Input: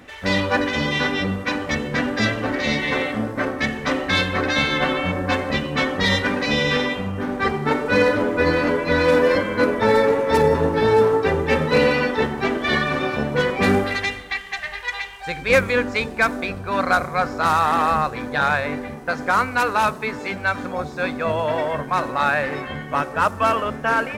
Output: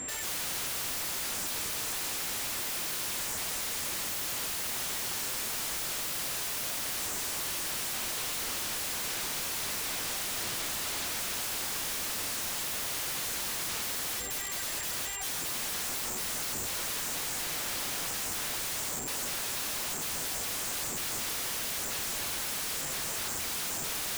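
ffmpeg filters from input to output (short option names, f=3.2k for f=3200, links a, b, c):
-af "aeval=exprs='val(0)+0.0158*sin(2*PI*7400*n/s)':c=same,alimiter=limit=-14.5dB:level=0:latency=1:release=11,bandreject=f=60:t=h:w=6,bandreject=f=120:t=h:w=6,bandreject=f=180:t=h:w=6,aeval=exprs='(mod(29.9*val(0)+1,2)-1)/29.9':c=same"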